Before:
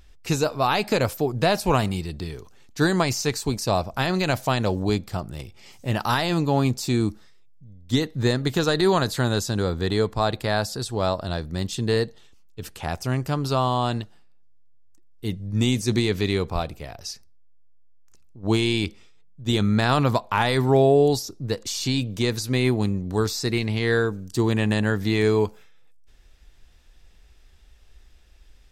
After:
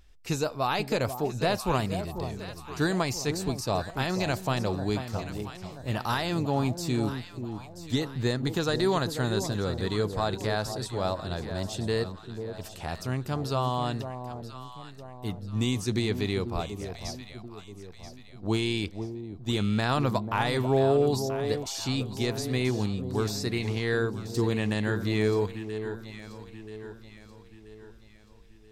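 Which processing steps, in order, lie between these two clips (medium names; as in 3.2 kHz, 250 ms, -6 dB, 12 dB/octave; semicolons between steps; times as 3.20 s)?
echo whose repeats swap between lows and highs 491 ms, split 920 Hz, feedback 65%, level -8 dB; trim -6 dB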